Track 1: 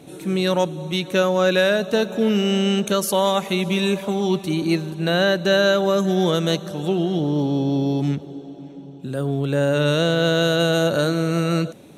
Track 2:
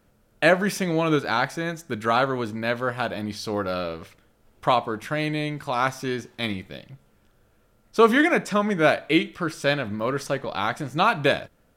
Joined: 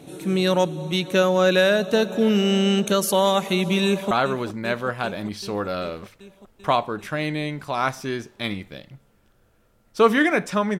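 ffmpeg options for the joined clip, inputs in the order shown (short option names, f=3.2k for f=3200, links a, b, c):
-filter_complex "[0:a]apad=whole_dur=10.79,atrim=end=10.79,atrim=end=4.112[a];[1:a]atrim=start=2.098:end=8.78[b];[a][b]acrossfade=d=0.004:c1=hsin:c2=hsin,asplit=2[c][d];[d]afade=t=in:st=3.86:d=0.01,afade=t=out:st=4.11:d=0.01,aecho=0:1:390|780|1170|1560|1950|2340|2730|3120|3510|3900|4290|4680:0.266073|0.199554|0.149666|0.112249|0.084187|0.0631403|0.0473552|0.0355164|0.0266373|0.019978|0.0149835|0.0112376[e];[c][e]amix=inputs=2:normalize=0"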